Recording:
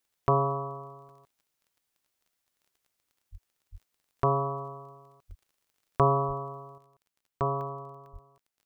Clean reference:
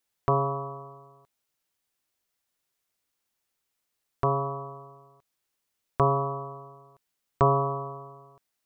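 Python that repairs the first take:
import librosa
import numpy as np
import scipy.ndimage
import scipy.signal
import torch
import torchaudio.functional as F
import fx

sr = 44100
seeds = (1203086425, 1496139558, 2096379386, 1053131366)

y = fx.fix_declick_ar(x, sr, threshold=6.5)
y = fx.fix_deplosive(y, sr, at_s=(3.31, 3.71, 5.28, 6.27, 8.12))
y = fx.fix_interpolate(y, sr, at_s=(1.09, 2.01, 2.45, 3.23, 5.31, 7.61, 8.06), length_ms=1.1)
y = fx.gain(y, sr, db=fx.steps((0.0, 0.0), (6.78, 7.5)))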